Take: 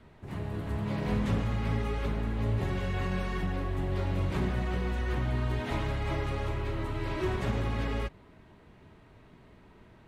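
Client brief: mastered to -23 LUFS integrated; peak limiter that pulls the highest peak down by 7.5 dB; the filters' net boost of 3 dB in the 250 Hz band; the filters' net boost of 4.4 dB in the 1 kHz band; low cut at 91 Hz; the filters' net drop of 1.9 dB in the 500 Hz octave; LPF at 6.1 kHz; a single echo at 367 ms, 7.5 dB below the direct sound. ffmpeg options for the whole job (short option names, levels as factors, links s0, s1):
-af "highpass=91,lowpass=6100,equalizer=f=250:t=o:g=5.5,equalizer=f=500:t=o:g=-6.5,equalizer=f=1000:t=o:g=7,alimiter=level_in=1.19:limit=0.0631:level=0:latency=1,volume=0.841,aecho=1:1:367:0.422,volume=3.55"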